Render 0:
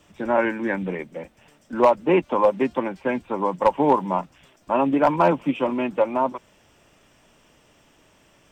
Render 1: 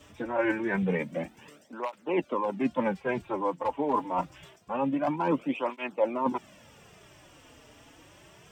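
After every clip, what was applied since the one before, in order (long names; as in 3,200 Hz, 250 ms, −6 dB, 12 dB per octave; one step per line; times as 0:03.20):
reversed playback
downward compressor 16 to 1, threshold −27 dBFS, peak gain reduction 16.5 dB
reversed playback
through-zero flanger with one copy inverted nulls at 0.26 Hz, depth 5.8 ms
level +6 dB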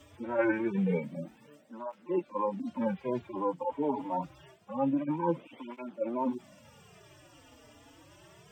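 harmonic-percussive split with one part muted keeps harmonic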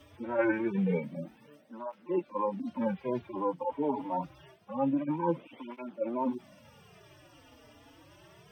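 parametric band 7,300 Hz −15 dB 0.24 octaves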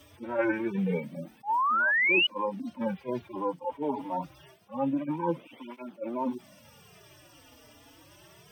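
sound drawn into the spectrogram rise, 0:01.43–0:02.27, 780–3,000 Hz −26 dBFS
high-shelf EQ 4,700 Hz +11.5 dB
level that may rise only so fast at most 370 dB per second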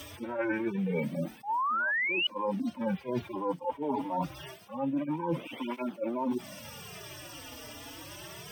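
reversed playback
downward compressor 8 to 1, threshold −37 dBFS, peak gain reduction 16.5 dB
reversed playback
one half of a high-frequency compander encoder only
level +8.5 dB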